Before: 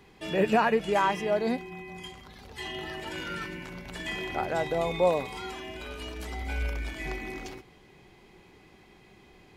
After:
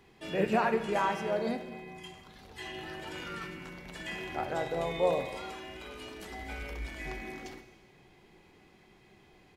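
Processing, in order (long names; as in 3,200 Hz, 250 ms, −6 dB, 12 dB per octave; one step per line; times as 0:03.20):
mains-hum notches 60/120/180 Hz
pitch-shifted copies added −3 semitones −10 dB
reverb whose tail is shaped and stops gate 460 ms falling, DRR 9 dB
level −5 dB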